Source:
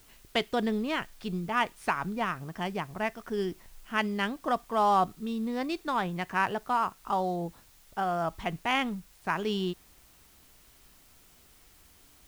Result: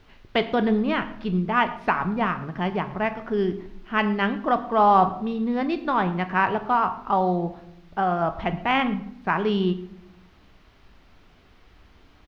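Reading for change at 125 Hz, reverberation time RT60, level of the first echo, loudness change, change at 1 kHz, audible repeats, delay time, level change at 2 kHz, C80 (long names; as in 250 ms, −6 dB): +8.5 dB, 0.75 s, −22.0 dB, +7.0 dB, +7.0 dB, 1, 110 ms, +5.5 dB, 15.5 dB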